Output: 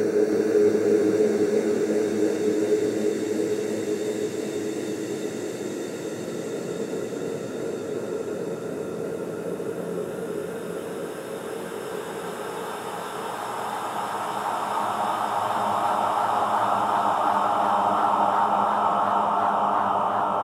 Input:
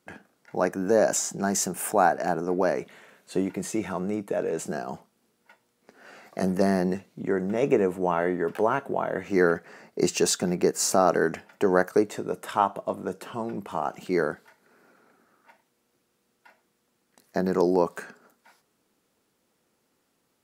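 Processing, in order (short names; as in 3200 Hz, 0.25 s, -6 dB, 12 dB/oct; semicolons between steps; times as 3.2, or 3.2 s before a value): Paulstretch 29×, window 0.50 s, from 11.99; echo 0.322 s -6.5 dB; warbling echo 0.342 s, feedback 61%, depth 173 cents, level -11 dB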